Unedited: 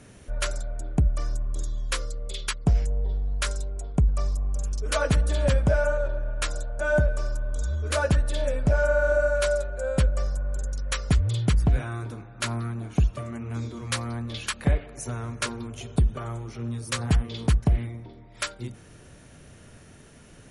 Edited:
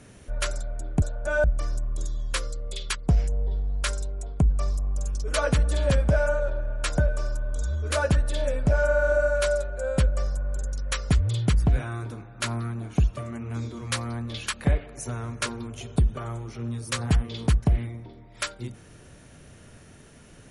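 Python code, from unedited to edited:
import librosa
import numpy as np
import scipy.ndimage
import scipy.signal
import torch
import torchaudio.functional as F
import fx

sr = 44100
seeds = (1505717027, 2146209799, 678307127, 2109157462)

y = fx.edit(x, sr, fx.move(start_s=6.56, length_s=0.42, to_s=1.02), tone=tone)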